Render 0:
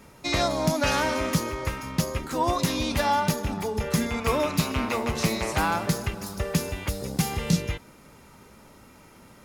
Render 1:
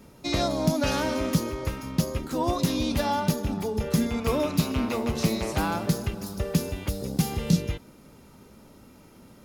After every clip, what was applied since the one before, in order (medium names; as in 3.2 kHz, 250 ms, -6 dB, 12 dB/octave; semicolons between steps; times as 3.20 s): graphic EQ 250/1000/2000/8000 Hz +3/-4/-6/-4 dB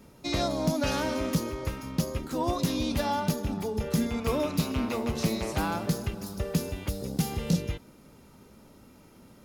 overload inside the chain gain 15.5 dB; trim -2.5 dB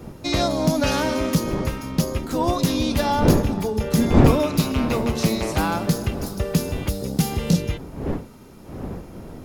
wind noise 310 Hz -34 dBFS; trim +7 dB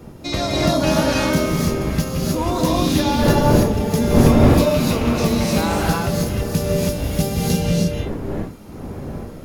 gated-style reverb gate 330 ms rising, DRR -3.5 dB; trim -1.5 dB